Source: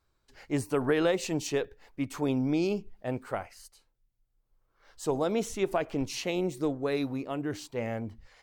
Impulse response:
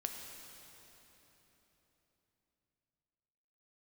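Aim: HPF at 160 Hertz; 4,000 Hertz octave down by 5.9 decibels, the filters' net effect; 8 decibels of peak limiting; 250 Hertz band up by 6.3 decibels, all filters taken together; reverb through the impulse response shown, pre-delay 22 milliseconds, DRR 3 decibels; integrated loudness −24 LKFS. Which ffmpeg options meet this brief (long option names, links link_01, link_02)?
-filter_complex "[0:a]highpass=160,equalizer=frequency=250:width_type=o:gain=8.5,equalizer=frequency=4000:width_type=o:gain=-8,alimiter=limit=-19.5dB:level=0:latency=1,asplit=2[link_01][link_02];[1:a]atrim=start_sample=2205,adelay=22[link_03];[link_02][link_03]afir=irnorm=-1:irlink=0,volume=-3dB[link_04];[link_01][link_04]amix=inputs=2:normalize=0,volume=4dB"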